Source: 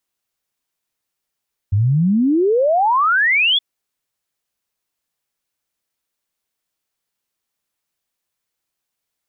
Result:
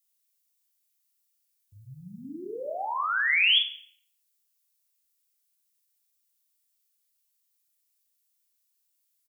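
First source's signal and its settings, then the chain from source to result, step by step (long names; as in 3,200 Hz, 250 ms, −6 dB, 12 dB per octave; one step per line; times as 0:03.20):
exponential sine sweep 94 Hz → 3,500 Hz 1.87 s −12 dBFS
first difference
double-tracking delay 39 ms −4.5 dB
rectangular room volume 140 cubic metres, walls mixed, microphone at 0.5 metres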